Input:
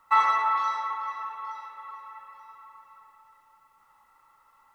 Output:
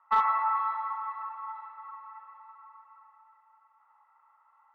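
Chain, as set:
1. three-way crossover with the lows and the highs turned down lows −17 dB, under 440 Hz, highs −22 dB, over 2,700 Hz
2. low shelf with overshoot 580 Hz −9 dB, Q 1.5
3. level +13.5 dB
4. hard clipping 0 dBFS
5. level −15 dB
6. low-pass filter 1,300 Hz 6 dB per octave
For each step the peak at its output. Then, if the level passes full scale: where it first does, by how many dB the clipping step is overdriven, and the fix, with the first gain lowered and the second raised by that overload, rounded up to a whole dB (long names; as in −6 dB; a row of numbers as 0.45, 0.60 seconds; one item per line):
−10.0, −8.5, +5.0, 0.0, −15.0, −16.0 dBFS
step 3, 5.0 dB
step 3 +8.5 dB, step 5 −10 dB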